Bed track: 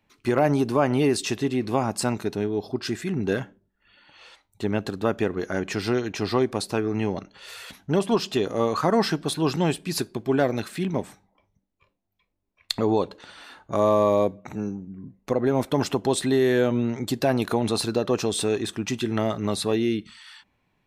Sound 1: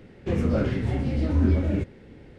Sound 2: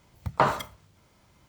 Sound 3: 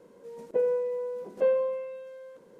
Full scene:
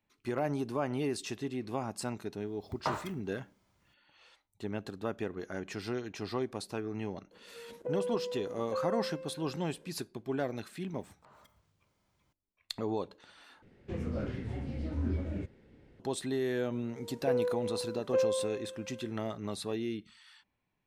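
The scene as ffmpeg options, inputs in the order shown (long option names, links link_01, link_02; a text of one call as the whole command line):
ffmpeg -i bed.wav -i cue0.wav -i cue1.wav -i cue2.wav -filter_complex "[2:a]asplit=2[link_01][link_02];[3:a]asplit=2[link_03][link_04];[0:a]volume=-12dB[link_05];[link_03]acompressor=threshold=-26dB:ratio=6:attack=3.2:release=140:knee=1:detection=peak[link_06];[link_02]acompressor=threshold=-37dB:ratio=16:attack=0.24:release=213:knee=6:detection=peak[link_07];[link_05]asplit=2[link_08][link_09];[link_08]atrim=end=13.624[link_10];[1:a]atrim=end=2.38,asetpts=PTS-STARTPTS,volume=-12dB[link_11];[link_09]atrim=start=15.996[link_12];[link_01]atrim=end=1.48,asetpts=PTS-STARTPTS,volume=-11.5dB,afade=type=in:duration=0.004:curve=hsin,afade=type=out:start_time=1.476:duration=0.004:curve=hsin,adelay=2460[link_13];[link_06]atrim=end=2.59,asetpts=PTS-STARTPTS,volume=-6dB,afade=type=in:duration=0.004:curve=hsin,afade=type=out:start_time=2.586:duration=0.004:curve=hsin,adelay=7310[link_14];[link_07]atrim=end=1.48,asetpts=PTS-STARTPTS,volume=-14.5dB,afade=type=in:duration=0.004:curve=hsin,afade=type=out:start_time=1.476:duration=0.004:curve=hsin,adelay=10850[link_15];[link_04]atrim=end=2.59,asetpts=PTS-STARTPTS,volume=-4.5dB,afade=type=in:duration=0.004:curve=hsin,afade=type=out:start_time=2.586:duration=0.004:curve=hsin,adelay=16720[link_16];[link_10][link_11]acrossfade=duration=0.004:curve1=hsin:curve2=hsin[link_17];[link_17][link_12]acrossfade=duration=0.004:curve1=hsin:curve2=hsin[link_18];[link_18][link_13][link_14][link_15][link_16]amix=inputs=5:normalize=0" out.wav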